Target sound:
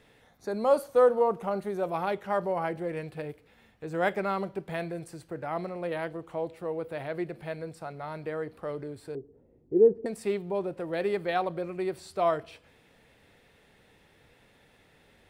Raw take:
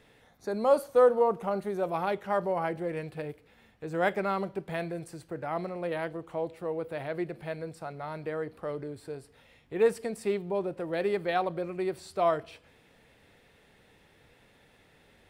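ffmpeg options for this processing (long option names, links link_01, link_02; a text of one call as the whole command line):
ffmpeg -i in.wav -filter_complex "[0:a]asettb=1/sr,asplit=3[link_01][link_02][link_03];[link_01]atrim=end=9.154[link_04];[link_02]atrim=start=9.15:end=10.06,asetpts=PTS-STARTPTS,afade=type=in:duration=0.004:curve=qsin,afade=type=out:start_time=0.906:duration=0.004:curve=qsin,lowpass=frequency=370:width_type=q:width=3.6[link_05];[link_03]atrim=start=10.056[link_06];[link_04][link_05]acrossfade=duration=0.004:curve1=hsin:curve2=qsin[link_07];[link_07][link_06]acrossfade=duration=0.004:curve1=qsin:curve2=hsin" out.wav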